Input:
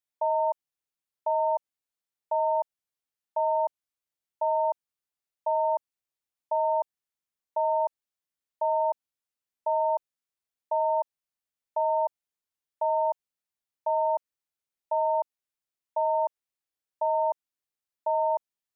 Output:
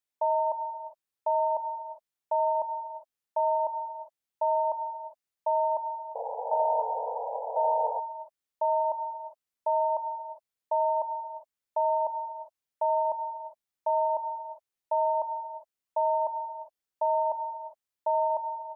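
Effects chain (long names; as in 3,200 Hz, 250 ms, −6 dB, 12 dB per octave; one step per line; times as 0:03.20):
reverb whose tail is shaped and stops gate 430 ms flat, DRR 8 dB
sound drawn into the spectrogram noise, 0:06.15–0:08.00, 440–980 Hz −34 dBFS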